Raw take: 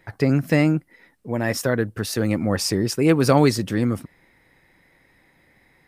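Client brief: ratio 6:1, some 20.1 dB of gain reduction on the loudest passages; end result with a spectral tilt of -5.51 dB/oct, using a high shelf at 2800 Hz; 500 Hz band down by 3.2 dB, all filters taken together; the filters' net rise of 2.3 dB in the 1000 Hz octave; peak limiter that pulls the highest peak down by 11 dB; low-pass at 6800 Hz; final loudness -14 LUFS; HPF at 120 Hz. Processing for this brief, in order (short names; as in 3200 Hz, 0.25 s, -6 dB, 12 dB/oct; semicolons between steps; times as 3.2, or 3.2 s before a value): HPF 120 Hz; LPF 6800 Hz; bell 500 Hz -5 dB; bell 1000 Hz +6 dB; high shelf 2800 Hz -8.5 dB; compressor 6:1, threshold -35 dBFS; gain +28 dB; limiter -3 dBFS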